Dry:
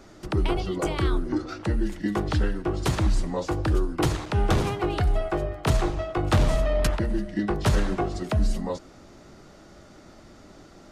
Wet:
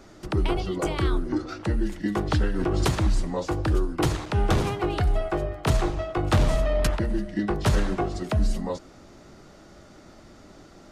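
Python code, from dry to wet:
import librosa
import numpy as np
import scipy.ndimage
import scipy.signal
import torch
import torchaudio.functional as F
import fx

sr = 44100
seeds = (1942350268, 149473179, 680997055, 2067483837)

y = fx.pre_swell(x, sr, db_per_s=21.0, at=(2.32, 2.94))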